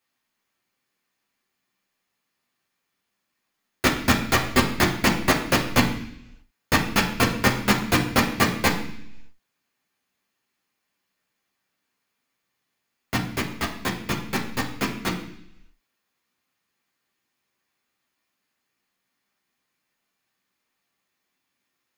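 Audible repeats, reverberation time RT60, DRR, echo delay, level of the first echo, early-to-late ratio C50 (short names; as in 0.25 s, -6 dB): none, 0.70 s, -2.0 dB, none, none, 8.0 dB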